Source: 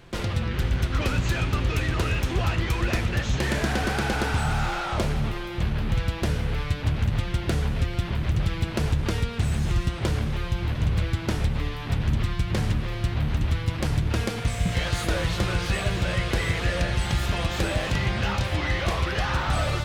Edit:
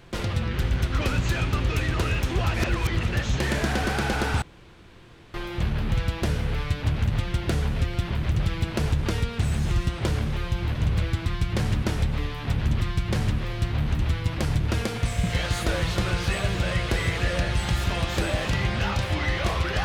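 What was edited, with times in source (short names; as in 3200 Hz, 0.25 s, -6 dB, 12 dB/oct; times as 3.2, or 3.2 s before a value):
2.54–3.03 reverse
4.42–5.34 room tone
12.24–12.82 copy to 11.26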